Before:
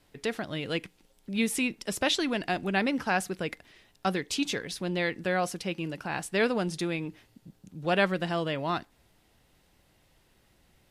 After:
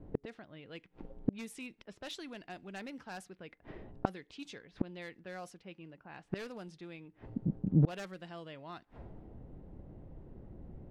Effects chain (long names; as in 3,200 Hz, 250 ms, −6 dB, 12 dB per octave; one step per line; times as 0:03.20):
wave folding −19 dBFS
low-pass that shuts in the quiet parts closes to 400 Hz, open at −24 dBFS
gate with flip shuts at −33 dBFS, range −34 dB
level +17 dB